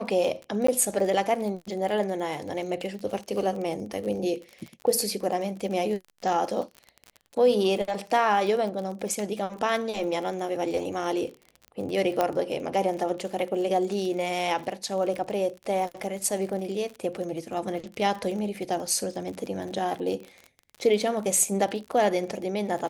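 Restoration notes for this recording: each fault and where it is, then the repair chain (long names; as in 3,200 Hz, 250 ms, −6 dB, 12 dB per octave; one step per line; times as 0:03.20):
surface crackle 35 per second −33 dBFS
0:00.67–0:00.68: drop-out 14 ms
0:12.21: click −11 dBFS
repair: click removal
repair the gap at 0:00.67, 14 ms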